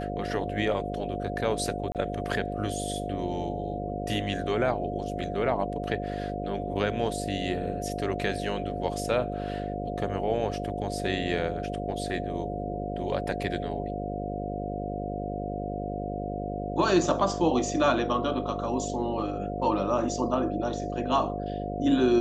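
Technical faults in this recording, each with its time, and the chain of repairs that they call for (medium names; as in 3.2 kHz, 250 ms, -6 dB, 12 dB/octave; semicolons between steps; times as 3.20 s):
buzz 50 Hz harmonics 12 -34 dBFS
whine 710 Hz -35 dBFS
1.92–1.95 s: dropout 28 ms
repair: band-stop 710 Hz, Q 30; de-hum 50 Hz, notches 12; interpolate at 1.92 s, 28 ms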